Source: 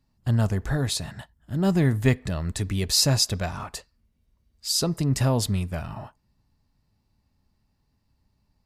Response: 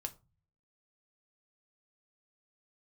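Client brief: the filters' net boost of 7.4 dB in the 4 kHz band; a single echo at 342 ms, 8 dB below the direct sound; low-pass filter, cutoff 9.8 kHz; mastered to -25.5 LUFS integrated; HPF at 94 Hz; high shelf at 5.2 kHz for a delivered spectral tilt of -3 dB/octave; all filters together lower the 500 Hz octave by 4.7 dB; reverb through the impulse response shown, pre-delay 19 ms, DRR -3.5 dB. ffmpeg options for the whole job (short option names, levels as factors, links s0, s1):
-filter_complex "[0:a]highpass=94,lowpass=9800,equalizer=f=500:t=o:g=-6.5,equalizer=f=4000:t=o:g=5.5,highshelf=f=5200:g=7.5,aecho=1:1:342:0.398,asplit=2[s0][s1];[1:a]atrim=start_sample=2205,adelay=19[s2];[s1][s2]afir=irnorm=-1:irlink=0,volume=1.88[s3];[s0][s3]amix=inputs=2:normalize=0,volume=0.335"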